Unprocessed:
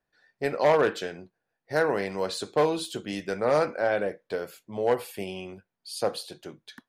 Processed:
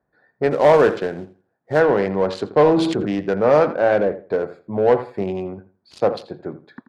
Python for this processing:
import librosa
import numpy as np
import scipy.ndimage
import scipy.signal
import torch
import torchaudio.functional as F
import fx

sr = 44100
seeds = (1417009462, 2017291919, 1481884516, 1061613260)

p1 = fx.wiener(x, sr, points=15)
p2 = scipy.signal.sosfilt(scipy.signal.butter(2, 53.0, 'highpass', fs=sr, output='sos'), p1)
p3 = fx.echo_filtered(p2, sr, ms=83, feedback_pct=22, hz=3400.0, wet_db=-14.5)
p4 = np.clip(10.0 ** (30.0 / 20.0) * p3, -1.0, 1.0) / 10.0 ** (30.0 / 20.0)
p5 = p3 + (p4 * librosa.db_to_amplitude(-4.5))
p6 = fx.quant_float(p5, sr, bits=2, at=(0.51, 1.8))
p7 = fx.spacing_loss(p6, sr, db_at_10k=20)
p8 = fx.sustainer(p7, sr, db_per_s=35.0, at=(2.6, 3.2))
y = p8 * librosa.db_to_amplitude(8.5)